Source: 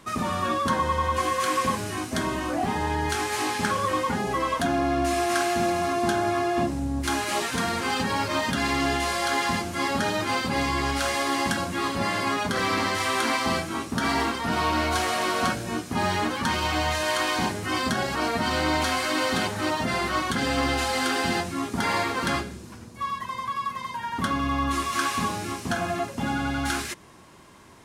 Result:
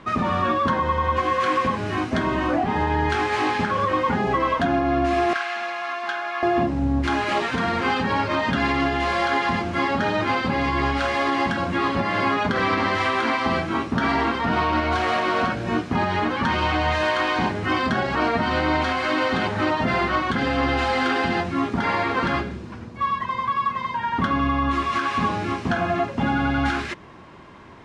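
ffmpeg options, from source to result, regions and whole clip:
-filter_complex "[0:a]asettb=1/sr,asplit=3[s0][s1][s2];[s0]atrim=end=5.334[s3];[s1]atrim=start=5.33:end=6.43,asetpts=PTS-STARTPTS,afade=t=in:d=0.004:c=qsin,afade=t=out:st=1.096:d=0.004:c=qsin,highpass=1300,highshelf=f=6400:g=-9.5,volume=10,asoftclip=hard,volume=0.1[s4];[s2]atrim=start=6.426[s5];[s3][s4]acrossfade=d=0.004:c1=hsin:c2=qsin[s6];[s6][s5]acrossfade=d=0.004:c1=qsin:c2=hsin,lowpass=2900,alimiter=limit=0.119:level=0:latency=1:release=231,volume=2.11"

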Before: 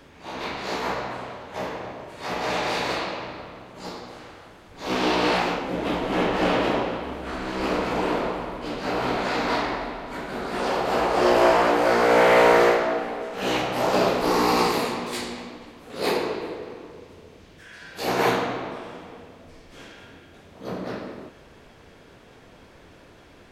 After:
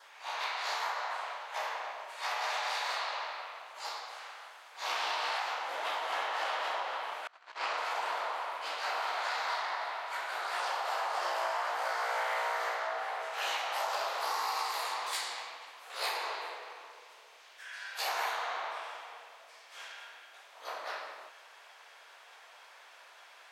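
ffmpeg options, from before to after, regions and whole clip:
-filter_complex "[0:a]asettb=1/sr,asplit=3[s0][s1][s2];[s0]atrim=end=7.274[s3];[s1]atrim=start=7.27:end=7.78,asetpts=PTS-STARTPTS,afade=t=in:d=0.004:c=qsin,afade=t=out:st=0.506:d=0.004:c=qsin,agate=range=0.0316:threshold=0.0398:ratio=16:release=100:detection=peak,lowpass=6800[s4];[s2]atrim=start=7.776[s5];[s3][s4]acrossfade=d=0.004:c1=hsin:c2=qsin[s6];[s6][s5]acrossfade=d=0.004:c1=qsin:c2=hsin,highpass=f=770:w=0.5412,highpass=f=770:w=1.3066,adynamicequalizer=threshold=0.00501:dfrequency=2500:dqfactor=3.7:tfrequency=2500:tqfactor=3.7:attack=5:release=100:ratio=0.375:range=2.5:mode=cutabove:tftype=bell,acompressor=threshold=0.0282:ratio=6"

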